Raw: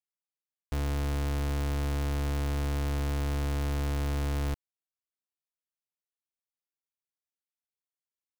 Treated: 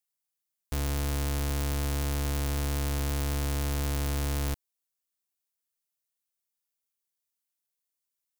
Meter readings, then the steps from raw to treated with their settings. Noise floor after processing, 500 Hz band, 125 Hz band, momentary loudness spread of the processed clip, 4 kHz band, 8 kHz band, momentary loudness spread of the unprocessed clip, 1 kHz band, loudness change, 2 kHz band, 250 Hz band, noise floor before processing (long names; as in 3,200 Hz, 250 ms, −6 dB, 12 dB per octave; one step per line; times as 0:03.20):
below −85 dBFS, 0.0 dB, 0.0 dB, 2 LU, +4.5 dB, +8.5 dB, 2 LU, +0.5 dB, +1.0 dB, +1.5 dB, 0.0 dB, below −85 dBFS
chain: high-shelf EQ 4,900 Hz +12 dB